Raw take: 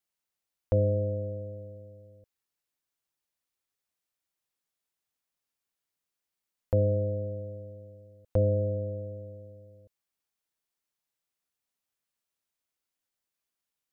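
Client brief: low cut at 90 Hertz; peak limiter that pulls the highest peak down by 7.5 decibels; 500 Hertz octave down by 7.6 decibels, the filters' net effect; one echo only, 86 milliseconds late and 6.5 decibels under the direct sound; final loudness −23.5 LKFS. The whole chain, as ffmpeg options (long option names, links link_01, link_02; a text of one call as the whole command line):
ffmpeg -i in.wav -af "highpass=90,equalizer=frequency=500:width_type=o:gain=-8,alimiter=level_in=2dB:limit=-24dB:level=0:latency=1,volume=-2dB,aecho=1:1:86:0.473,volume=16.5dB" out.wav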